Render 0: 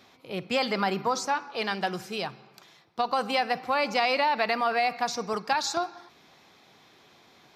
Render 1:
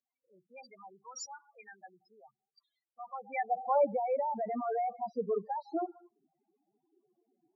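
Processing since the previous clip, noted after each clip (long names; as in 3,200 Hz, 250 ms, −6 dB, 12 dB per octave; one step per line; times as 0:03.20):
leveller curve on the samples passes 2
spectral peaks only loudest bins 4
band-pass filter sweep 6,900 Hz → 330 Hz, 0:02.87–0:03.96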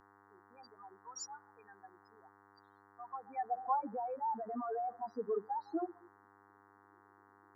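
hum with harmonics 100 Hz, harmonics 22, −60 dBFS 0 dB per octave
phaser with its sweep stopped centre 580 Hz, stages 6
level −1 dB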